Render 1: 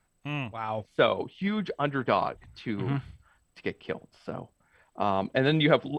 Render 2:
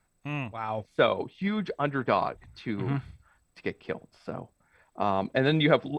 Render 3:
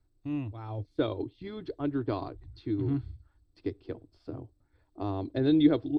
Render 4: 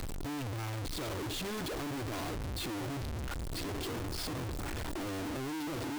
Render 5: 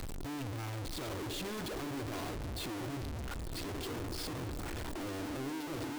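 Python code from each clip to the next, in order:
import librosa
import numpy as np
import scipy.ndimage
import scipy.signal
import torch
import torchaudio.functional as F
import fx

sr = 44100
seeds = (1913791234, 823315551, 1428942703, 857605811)

y1 = fx.notch(x, sr, hz=3000.0, q=8.4)
y2 = fx.curve_eq(y1, sr, hz=(110.0, 200.0, 300.0, 520.0, 2400.0, 4300.0, 6800.0), db=(0, -23, 2, -15, -23, -10, -22))
y2 = y2 * librosa.db_to_amplitude(5.5)
y3 = np.sign(y2) * np.sqrt(np.mean(np.square(y2)))
y3 = y3 * librosa.db_to_amplitude(-5.5)
y4 = fx.echo_stepped(y3, sr, ms=149, hz=300.0, octaves=0.7, feedback_pct=70, wet_db=-6.0)
y4 = y4 * librosa.db_to_amplitude(-2.5)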